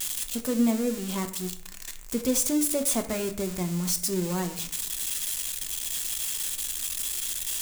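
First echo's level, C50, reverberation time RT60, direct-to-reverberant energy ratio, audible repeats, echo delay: no echo, 12.5 dB, 0.60 s, 6.0 dB, no echo, no echo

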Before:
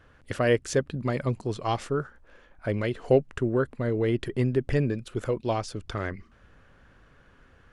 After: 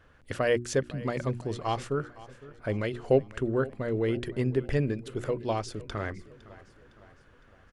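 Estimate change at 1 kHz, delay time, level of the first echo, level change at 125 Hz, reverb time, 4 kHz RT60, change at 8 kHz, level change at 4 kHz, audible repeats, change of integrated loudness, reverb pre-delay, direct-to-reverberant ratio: -2.0 dB, 509 ms, -19.0 dB, -3.0 dB, no reverb, no reverb, no reading, -2.0 dB, 3, -2.5 dB, no reverb, no reverb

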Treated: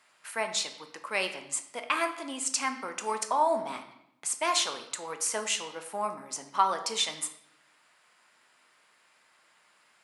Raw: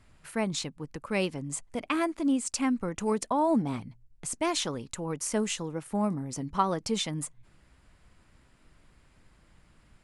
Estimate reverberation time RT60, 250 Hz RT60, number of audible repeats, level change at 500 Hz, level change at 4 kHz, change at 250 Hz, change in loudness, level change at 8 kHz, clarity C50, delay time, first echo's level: 0.80 s, 1.0 s, no echo, -2.0 dB, +4.5 dB, -14.0 dB, 0.0 dB, +4.0 dB, 10.0 dB, no echo, no echo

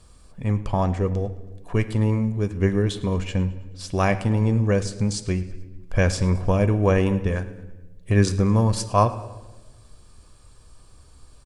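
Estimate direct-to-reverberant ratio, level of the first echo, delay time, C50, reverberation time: 10.0 dB, -19.5 dB, 108 ms, 13.5 dB, 1.1 s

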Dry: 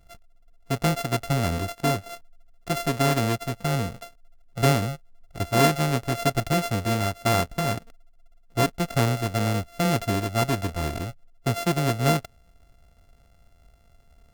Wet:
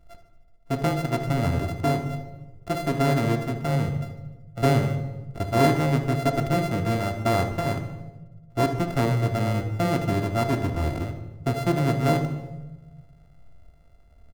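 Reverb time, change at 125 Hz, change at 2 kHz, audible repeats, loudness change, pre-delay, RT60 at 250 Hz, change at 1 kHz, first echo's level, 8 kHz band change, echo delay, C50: 1.2 s, +1.5 dB, -2.0 dB, 5, 0.0 dB, 3 ms, 1.5 s, -0.5 dB, -13.5 dB, -7.5 dB, 75 ms, 8.0 dB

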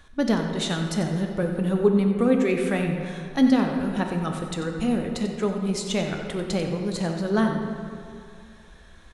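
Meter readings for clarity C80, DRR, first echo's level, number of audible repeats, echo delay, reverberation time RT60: 5.0 dB, 2.5 dB, -11.0 dB, 1, 92 ms, 2.5 s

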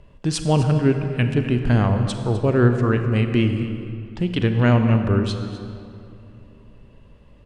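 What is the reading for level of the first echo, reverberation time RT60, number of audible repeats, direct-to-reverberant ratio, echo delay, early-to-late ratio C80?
-15.0 dB, 2.7 s, 1, 6.0 dB, 254 ms, 7.5 dB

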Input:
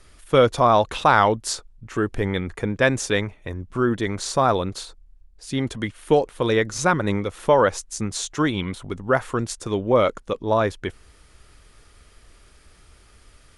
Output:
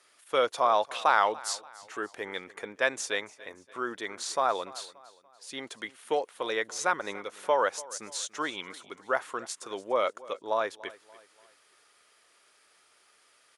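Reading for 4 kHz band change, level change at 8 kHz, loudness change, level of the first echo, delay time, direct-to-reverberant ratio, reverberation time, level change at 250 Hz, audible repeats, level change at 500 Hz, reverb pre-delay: -6.0 dB, -6.0 dB, -8.5 dB, -20.0 dB, 289 ms, no reverb, no reverb, -18.5 dB, 3, -10.0 dB, no reverb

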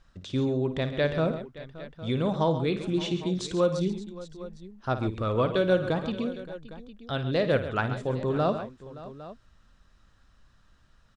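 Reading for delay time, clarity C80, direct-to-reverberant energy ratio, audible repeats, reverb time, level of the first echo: 55 ms, no reverb, no reverb, 4, no reverb, -11.5 dB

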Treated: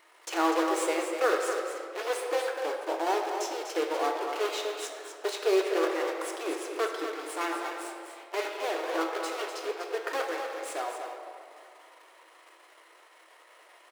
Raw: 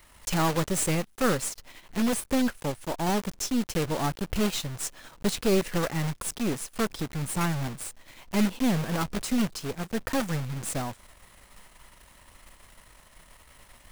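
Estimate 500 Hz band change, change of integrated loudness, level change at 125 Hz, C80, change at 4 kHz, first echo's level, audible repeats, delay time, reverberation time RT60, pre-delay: +3.0 dB, -2.0 dB, under -40 dB, 3.0 dB, -2.5 dB, -7.5 dB, 1, 247 ms, 2.3 s, 3 ms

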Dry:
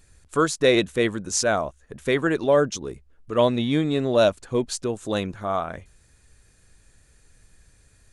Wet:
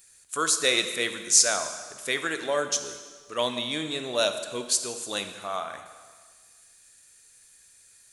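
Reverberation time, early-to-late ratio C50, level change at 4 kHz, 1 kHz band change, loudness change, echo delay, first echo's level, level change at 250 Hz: 1.6 s, 9.0 dB, +4.0 dB, -4.5 dB, -2.5 dB, no echo, no echo, -12.5 dB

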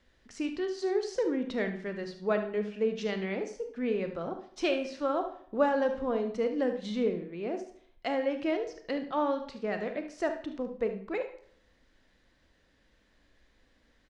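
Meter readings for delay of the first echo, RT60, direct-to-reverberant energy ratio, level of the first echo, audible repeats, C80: 73 ms, 0.65 s, 6.0 dB, -12.0 dB, 1, 13.5 dB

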